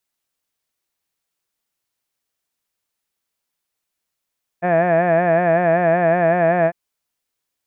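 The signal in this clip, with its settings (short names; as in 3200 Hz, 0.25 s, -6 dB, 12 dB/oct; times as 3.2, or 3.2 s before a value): formant-synthesis vowel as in had, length 2.10 s, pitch 171 Hz, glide 0 st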